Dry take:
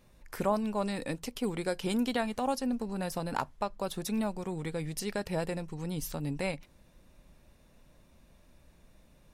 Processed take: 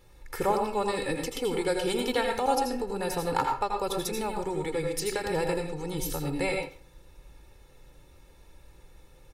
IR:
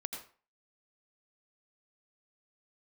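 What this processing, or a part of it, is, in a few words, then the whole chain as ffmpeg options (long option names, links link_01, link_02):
microphone above a desk: -filter_complex "[0:a]aecho=1:1:2.3:0.74[link_01];[1:a]atrim=start_sample=2205[link_02];[link_01][link_02]afir=irnorm=-1:irlink=0,volume=4.5dB"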